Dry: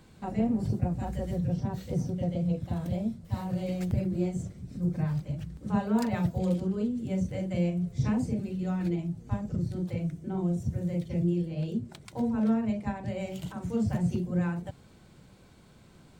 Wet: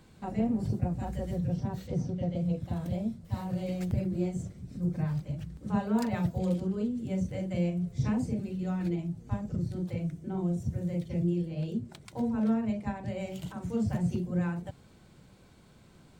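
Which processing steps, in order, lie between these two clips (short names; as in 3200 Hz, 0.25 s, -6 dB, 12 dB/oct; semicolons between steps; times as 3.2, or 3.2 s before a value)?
1.87–2.35 LPF 6100 Hz 12 dB/oct; gain -1.5 dB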